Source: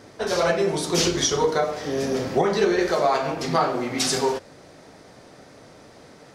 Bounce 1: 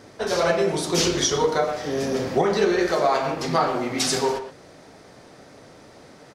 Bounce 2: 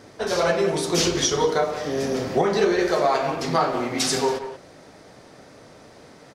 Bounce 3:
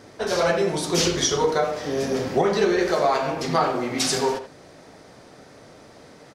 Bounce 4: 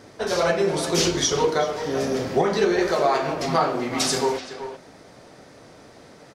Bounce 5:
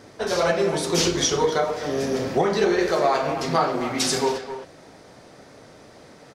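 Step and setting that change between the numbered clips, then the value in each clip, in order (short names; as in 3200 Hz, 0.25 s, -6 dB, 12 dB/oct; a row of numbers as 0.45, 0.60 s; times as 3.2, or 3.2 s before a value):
speakerphone echo, time: 120, 180, 80, 380, 260 ms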